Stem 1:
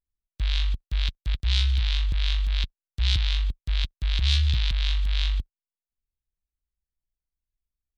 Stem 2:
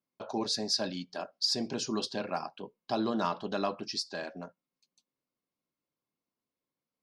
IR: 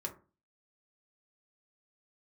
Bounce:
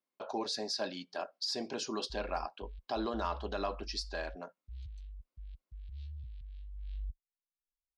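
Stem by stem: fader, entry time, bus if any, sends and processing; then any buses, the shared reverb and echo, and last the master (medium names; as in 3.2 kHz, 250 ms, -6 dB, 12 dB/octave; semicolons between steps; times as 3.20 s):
6.68 s -22.5 dB -> 7.05 s -13.5 dB, 1.70 s, no send, spectral contrast enhancement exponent 1.6; peaking EQ 3.6 kHz -10.5 dB 0.46 oct
0.0 dB, 0.00 s, no send, peak limiter -23 dBFS, peak gain reduction 6 dB; tone controls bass -13 dB, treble -5 dB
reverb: none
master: none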